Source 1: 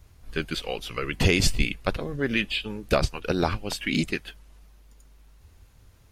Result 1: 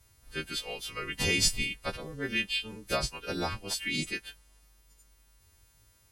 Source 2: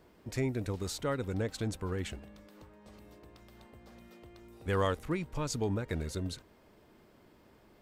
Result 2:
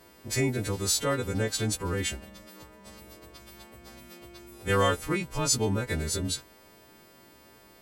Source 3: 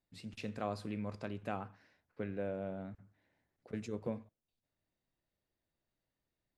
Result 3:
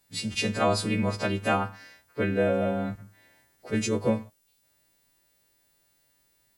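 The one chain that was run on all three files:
partials quantised in pitch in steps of 2 st; MP3 192 kbps 44.1 kHz; peak normalisation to -12 dBFS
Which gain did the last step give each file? -8.0 dB, +6.0 dB, +15.0 dB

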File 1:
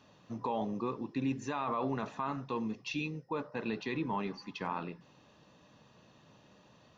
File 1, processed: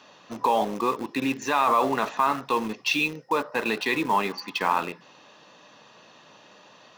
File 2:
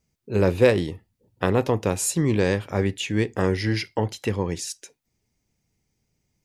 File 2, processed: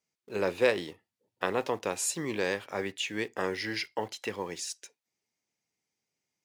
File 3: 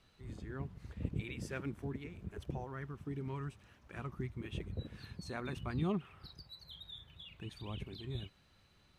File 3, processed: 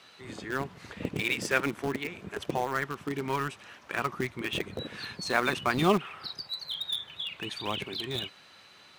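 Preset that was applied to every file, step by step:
frequency weighting A; in parallel at -11 dB: bit crusher 7-bit; on the sum: peak normalisation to -9 dBFS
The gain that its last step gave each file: +12.0 dB, -6.5 dB, +16.0 dB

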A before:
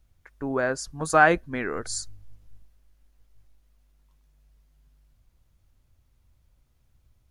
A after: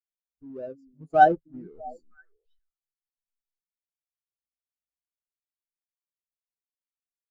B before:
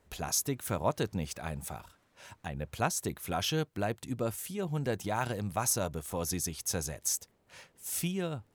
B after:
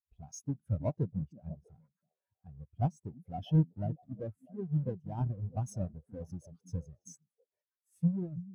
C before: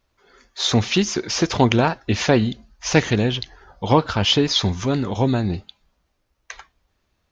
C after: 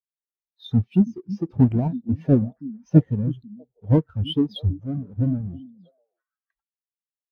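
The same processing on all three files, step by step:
square wave that keeps the level; repeats whose band climbs or falls 323 ms, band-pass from 220 Hz, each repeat 1.4 oct, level -5 dB; spectral contrast expander 2.5:1; trim -1 dB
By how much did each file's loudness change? +3.5 LU, -2.5 LU, -3.0 LU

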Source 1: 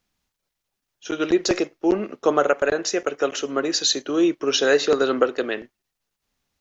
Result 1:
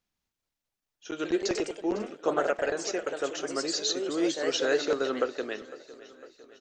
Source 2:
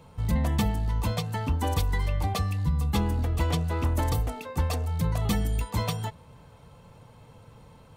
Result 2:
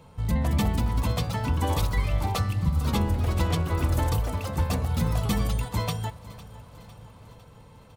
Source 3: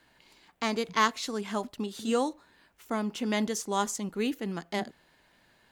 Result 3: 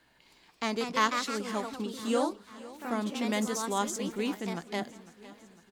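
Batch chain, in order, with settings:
feedback delay 504 ms, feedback 58%, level -18.5 dB; ever faster or slower copies 254 ms, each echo +2 st, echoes 2, each echo -6 dB; peak normalisation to -12 dBFS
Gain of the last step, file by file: -9.0 dB, 0.0 dB, -2.0 dB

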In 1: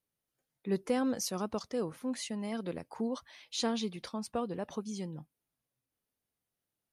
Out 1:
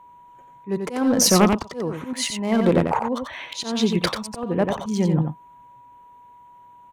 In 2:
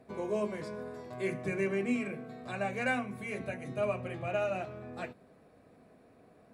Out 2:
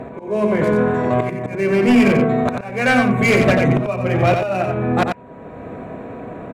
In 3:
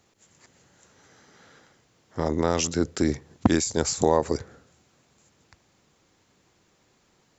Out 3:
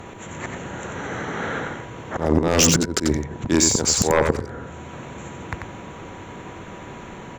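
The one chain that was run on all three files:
local Wiener filter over 9 samples; in parallel at +2 dB: compression 16:1, threshold -36 dBFS; on the sum: slow attack 640 ms; whistle 970 Hz -66 dBFS; sine folder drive 8 dB, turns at -18.5 dBFS; on a send: delay 90 ms -5.5 dB; on the sum: peak normalisation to -6 dBFS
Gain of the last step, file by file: +8.5 dB, +9.0 dB, +9.0 dB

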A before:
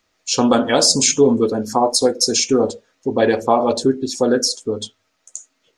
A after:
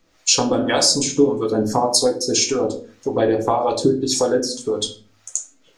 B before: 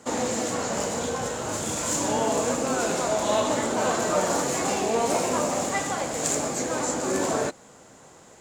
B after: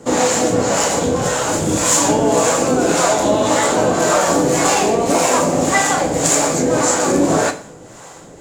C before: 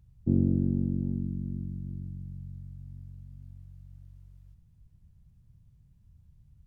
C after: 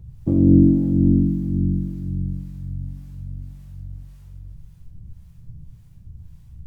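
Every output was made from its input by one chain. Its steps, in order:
compression, threshold -22 dBFS; harmonic tremolo 1.8 Hz, depth 70%, crossover 560 Hz; simulated room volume 33 m³, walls mixed, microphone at 0.34 m; peak normalisation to -1.5 dBFS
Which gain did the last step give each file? +9.0 dB, +13.5 dB, +17.0 dB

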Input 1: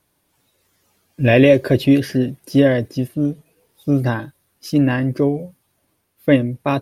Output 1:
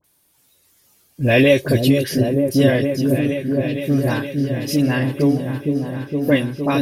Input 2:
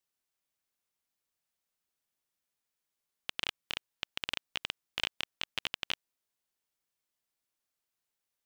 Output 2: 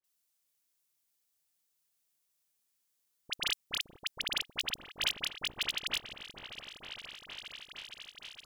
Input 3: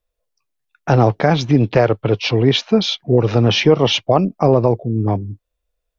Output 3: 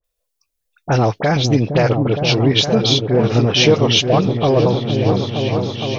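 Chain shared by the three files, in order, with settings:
treble shelf 3.4 kHz +12 dB; phase dispersion highs, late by 42 ms, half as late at 1.6 kHz; on a send: delay with an opening low-pass 463 ms, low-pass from 400 Hz, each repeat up 1 oct, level -3 dB; on the sum: trim -2.5 dB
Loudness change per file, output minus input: -1.0 LU, +1.0 LU, +0.5 LU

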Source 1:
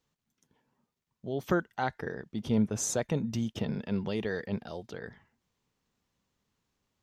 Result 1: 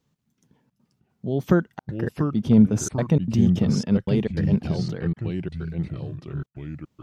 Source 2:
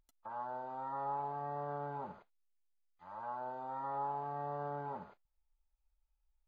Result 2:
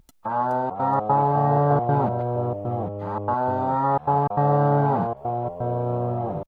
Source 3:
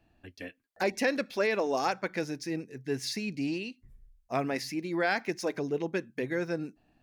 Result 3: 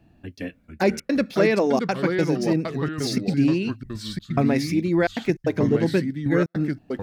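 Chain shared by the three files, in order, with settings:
peaking EQ 160 Hz +11 dB 2.4 oct; trance gate "xxxxxxx.xx." 151 bpm -60 dB; ever faster or slower copies 403 ms, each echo -3 st, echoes 2, each echo -6 dB; normalise loudness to -23 LUFS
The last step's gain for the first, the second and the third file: +2.0 dB, +17.0 dB, +4.5 dB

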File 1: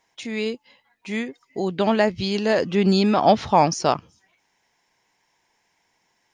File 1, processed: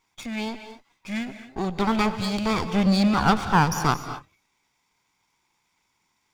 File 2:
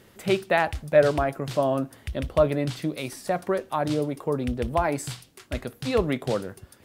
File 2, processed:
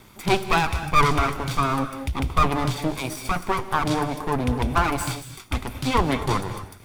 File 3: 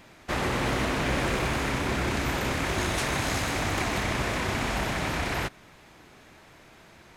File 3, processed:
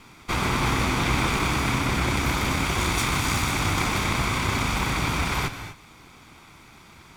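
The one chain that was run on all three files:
comb filter that takes the minimum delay 0.86 ms; gated-style reverb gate 270 ms rising, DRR 10 dB; normalise loudness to -24 LUFS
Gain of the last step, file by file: -2.0 dB, +6.0 dB, +5.0 dB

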